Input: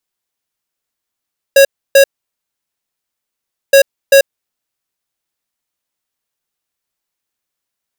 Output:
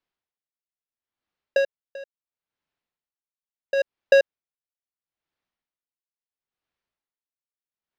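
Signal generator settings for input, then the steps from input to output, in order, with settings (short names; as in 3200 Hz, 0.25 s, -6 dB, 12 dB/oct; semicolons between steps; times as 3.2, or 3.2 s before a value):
beep pattern square 550 Hz, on 0.09 s, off 0.30 s, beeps 2, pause 1.69 s, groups 2, -5 dBFS
compressor, threshold -12 dBFS; air absorption 230 m; dB-linear tremolo 0.74 Hz, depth 24 dB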